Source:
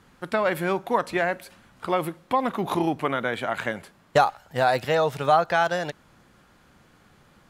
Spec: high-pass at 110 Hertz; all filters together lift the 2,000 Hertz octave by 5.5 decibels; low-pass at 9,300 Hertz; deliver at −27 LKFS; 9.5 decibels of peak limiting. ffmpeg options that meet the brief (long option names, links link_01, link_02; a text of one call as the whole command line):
ffmpeg -i in.wav -af "highpass=110,lowpass=9300,equalizer=frequency=2000:width_type=o:gain=7.5,volume=-2dB,alimiter=limit=-13.5dB:level=0:latency=1" out.wav